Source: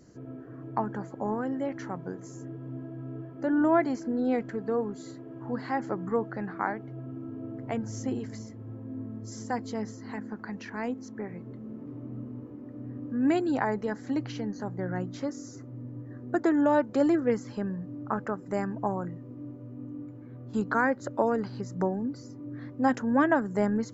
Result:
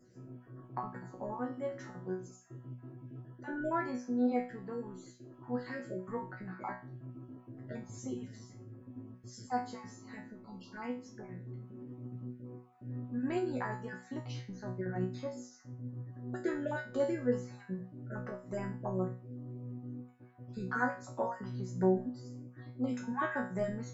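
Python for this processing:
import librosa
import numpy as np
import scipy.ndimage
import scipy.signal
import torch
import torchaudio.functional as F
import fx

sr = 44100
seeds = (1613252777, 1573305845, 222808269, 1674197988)

y = fx.spec_dropout(x, sr, seeds[0], share_pct=31)
y = fx.resonator_bank(y, sr, root=47, chord='fifth', decay_s=0.36)
y = y * librosa.db_to_amplitude(8.0)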